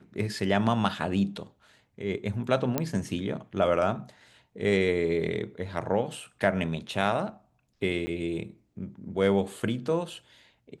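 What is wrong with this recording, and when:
2.78 s: pop -11 dBFS
8.06–8.07 s: dropout 10 ms

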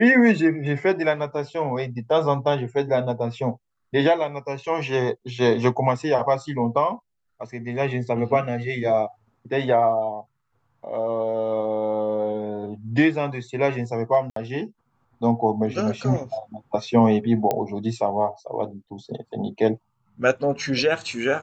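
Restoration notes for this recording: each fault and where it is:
14.30–14.36 s: dropout 63 ms
17.51 s: pop -10 dBFS

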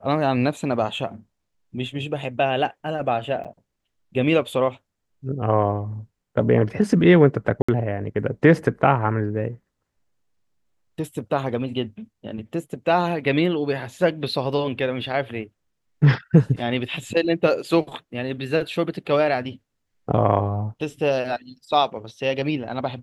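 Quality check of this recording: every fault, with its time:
3.44–3.45 s: dropout 7.2 ms
7.62–7.68 s: dropout 65 ms

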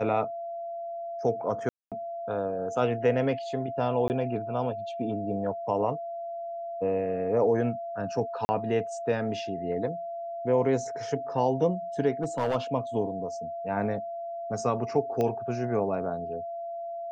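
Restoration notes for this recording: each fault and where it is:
whine 680 Hz -33 dBFS
1.69–1.92 s: dropout 227 ms
4.08–4.10 s: dropout 19 ms
8.45–8.49 s: dropout 40 ms
12.23–12.56 s: clipped -22 dBFS
15.21 s: pop -17 dBFS

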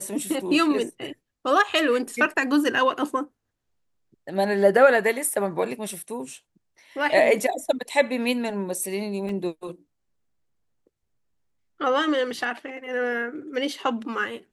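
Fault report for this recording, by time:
9.29 s: dropout 2.8 ms

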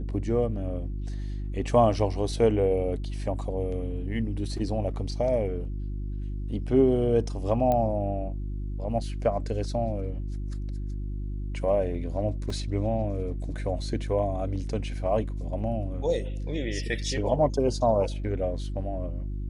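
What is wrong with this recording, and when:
hum 50 Hz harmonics 7 -32 dBFS
7.72 s: pop -15 dBFS
12.50 s: dropout 3 ms

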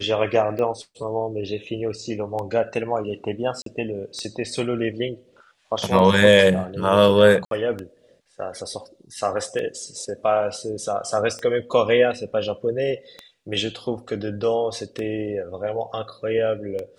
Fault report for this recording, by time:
tick 33 1/3 rpm -18 dBFS
3.62–3.66 s: dropout 43 ms
7.45–7.51 s: dropout 62 ms

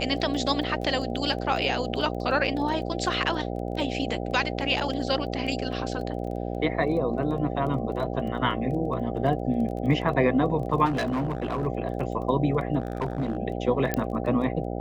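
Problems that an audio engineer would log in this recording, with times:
buzz 60 Hz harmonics 13 -31 dBFS
crackle 14 per s -34 dBFS
10.85–11.67 s: clipped -23 dBFS
12.80–13.37 s: clipped -23 dBFS
13.94 s: pop -11 dBFS

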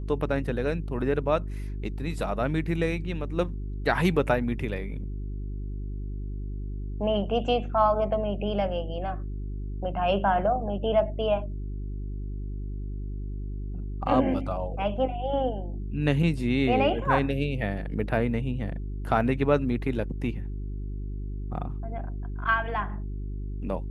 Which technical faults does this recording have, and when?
hum 50 Hz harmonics 8 -33 dBFS

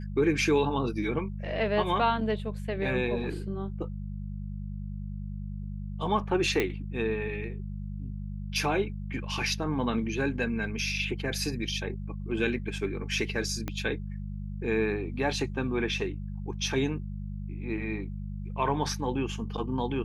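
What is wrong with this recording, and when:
hum 50 Hz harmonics 4 -36 dBFS
6.60 s: pop -13 dBFS
13.68 s: pop -18 dBFS

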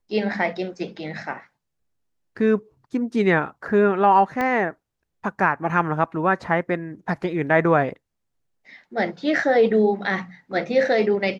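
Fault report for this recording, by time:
4.41 s: pop -13 dBFS

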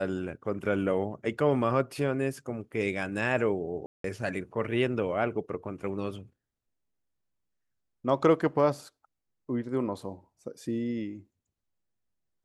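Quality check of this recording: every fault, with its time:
3.86–4.04 s: dropout 183 ms

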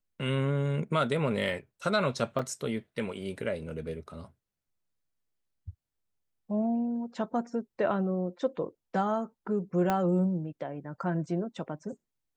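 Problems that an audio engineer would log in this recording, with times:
2.39 s: dropout 3.3 ms
9.90 s: pop -14 dBFS

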